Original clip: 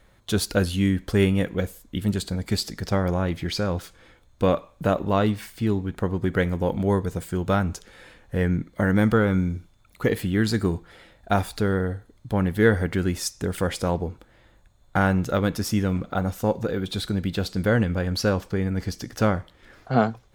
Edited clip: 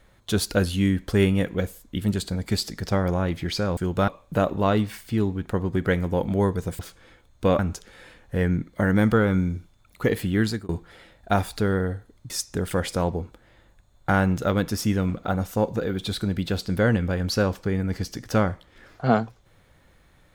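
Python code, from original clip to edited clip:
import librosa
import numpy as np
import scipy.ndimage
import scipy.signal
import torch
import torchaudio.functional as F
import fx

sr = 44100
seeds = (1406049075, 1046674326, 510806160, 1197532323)

y = fx.edit(x, sr, fx.swap(start_s=3.77, length_s=0.8, other_s=7.28, other_length_s=0.31),
    fx.fade_out_span(start_s=10.43, length_s=0.26),
    fx.cut(start_s=12.3, length_s=0.87), tone=tone)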